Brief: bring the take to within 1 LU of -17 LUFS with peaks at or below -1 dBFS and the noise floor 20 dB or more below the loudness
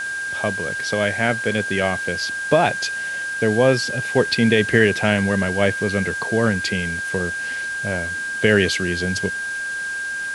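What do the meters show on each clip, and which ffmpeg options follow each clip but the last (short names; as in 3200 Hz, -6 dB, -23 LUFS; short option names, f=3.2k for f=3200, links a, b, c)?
steady tone 1600 Hz; tone level -24 dBFS; noise floor -27 dBFS; noise floor target -41 dBFS; loudness -20.5 LUFS; peak -2.0 dBFS; loudness target -17.0 LUFS
-> -af "bandreject=f=1.6k:w=30"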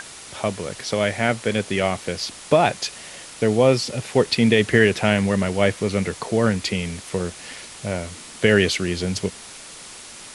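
steady tone none; noise floor -40 dBFS; noise floor target -42 dBFS
-> -af "afftdn=nr=6:nf=-40"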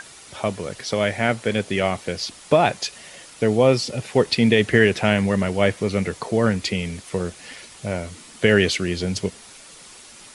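noise floor -45 dBFS; loudness -21.5 LUFS; peak -3.0 dBFS; loudness target -17.0 LUFS
-> -af "volume=4.5dB,alimiter=limit=-1dB:level=0:latency=1"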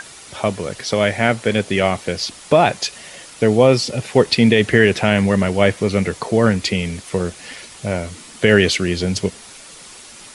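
loudness -17.5 LUFS; peak -1.0 dBFS; noise floor -40 dBFS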